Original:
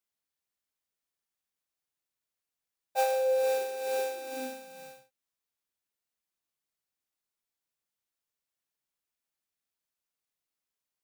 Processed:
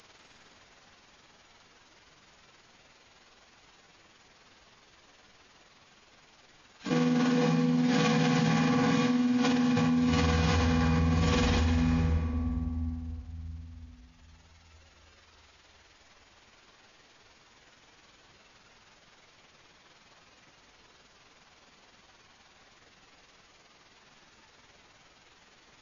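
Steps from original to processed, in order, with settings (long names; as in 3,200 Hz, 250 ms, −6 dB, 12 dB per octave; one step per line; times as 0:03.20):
reverb reduction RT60 2 s
high-shelf EQ 11,000 Hz −11 dB
phase-vocoder pitch shift with formants kept −5.5 semitones
amplitude modulation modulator 45 Hz, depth 35%
convolution reverb RT60 1.3 s, pre-delay 82 ms, DRR 2 dB
wrong playback speed 78 rpm record played at 33 rpm
envelope flattener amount 100%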